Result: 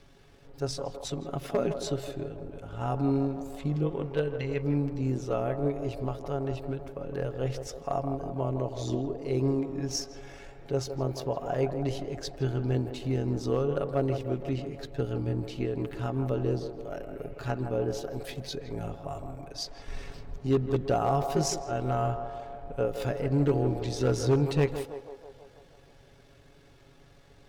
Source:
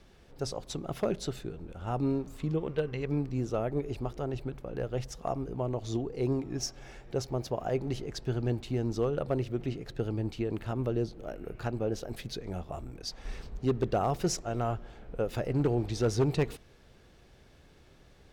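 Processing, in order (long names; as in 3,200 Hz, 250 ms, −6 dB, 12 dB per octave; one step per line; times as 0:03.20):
time stretch by overlap-add 1.5×, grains 43 ms
on a send: feedback echo with a band-pass in the loop 162 ms, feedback 70%, band-pass 660 Hz, level −7 dB
on the sum: level +2.5 dB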